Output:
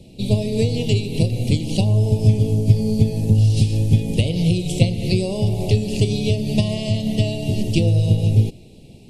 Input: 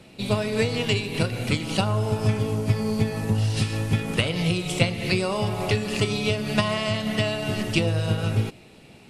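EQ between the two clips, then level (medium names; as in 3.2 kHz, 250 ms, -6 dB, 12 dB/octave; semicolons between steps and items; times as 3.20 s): Butterworth band-stop 1.4 kHz, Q 0.56; bass shelf 89 Hz +11 dB; bass shelf 360 Hz +3 dB; +1.5 dB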